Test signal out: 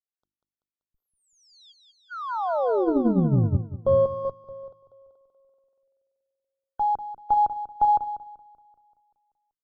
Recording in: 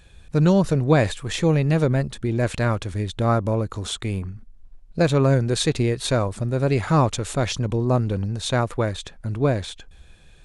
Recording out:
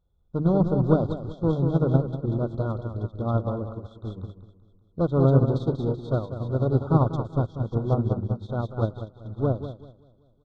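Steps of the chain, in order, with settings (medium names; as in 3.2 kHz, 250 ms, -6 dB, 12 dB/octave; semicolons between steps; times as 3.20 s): hum notches 50/100/150/200/250/300/350 Hz; in parallel at -1 dB: peak limiter -16.5 dBFS; on the sum: one-sided clip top -16 dBFS, bottom -7 dBFS; brick-wall FIR band-stop 1.5–3.2 kHz; tape spacing loss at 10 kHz 41 dB; feedback delay 192 ms, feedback 58%, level -5 dB; upward expansion 2.5:1, over -29 dBFS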